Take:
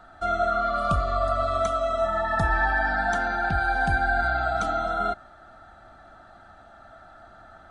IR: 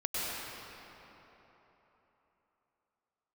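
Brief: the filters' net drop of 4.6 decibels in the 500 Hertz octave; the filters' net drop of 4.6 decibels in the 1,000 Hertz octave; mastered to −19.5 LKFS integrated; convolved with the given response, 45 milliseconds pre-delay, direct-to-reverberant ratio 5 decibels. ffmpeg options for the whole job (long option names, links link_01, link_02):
-filter_complex "[0:a]equalizer=frequency=500:width_type=o:gain=-3.5,equalizer=frequency=1000:width_type=o:gain=-6,asplit=2[link_01][link_02];[1:a]atrim=start_sample=2205,adelay=45[link_03];[link_02][link_03]afir=irnorm=-1:irlink=0,volume=-12.5dB[link_04];[link_01][link_04]amix=inputs=2:normalize=0,volume=7.5dB"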